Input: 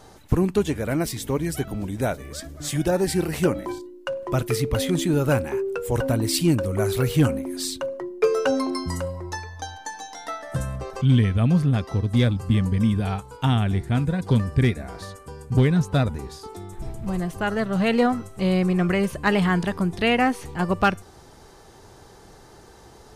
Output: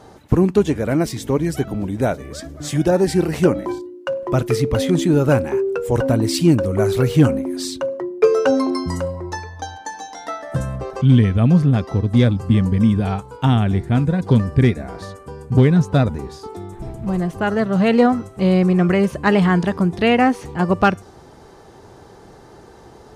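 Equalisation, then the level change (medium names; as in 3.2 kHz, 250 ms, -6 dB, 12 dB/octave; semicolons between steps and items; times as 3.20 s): high-pass 260 Hz 6 dB/octave; tilt EQ -2.5 dB/octave; dynamic bell 6 kHz, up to +4 dB, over -52 dBFS, Q 1.4; +4.5 dB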